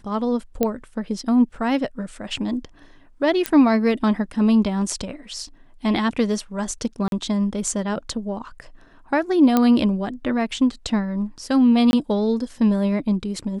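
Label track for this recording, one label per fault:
0.630000	0.630000	pop -7 dBFS
3.460000	3.460000	pop -5 dBFS
7.080000	7.120000	gap 42 ms
9.570000	9.570000	pop -5 dBFS
11.910000	11.930000	gap 21 ms

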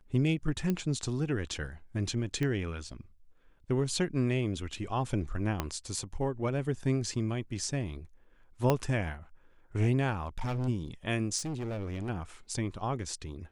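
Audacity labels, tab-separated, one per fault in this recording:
0.700000	0.700000	pop -18 dBFS
2.430000	2.430000	pop -20 dBFS
5.600000	5.600000	pop -15 dBFS
8.700000	8.700000	pop -12 dBFS
10.240000	10.690000	clipped -29 dBFS
11.370000	12.100000	clipped -32 dBFS

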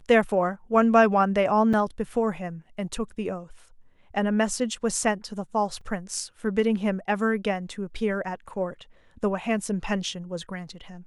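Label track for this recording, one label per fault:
1.730000	1.740000	gap 5.7 ms
5.810000	5.810000	gap 3.3 ms

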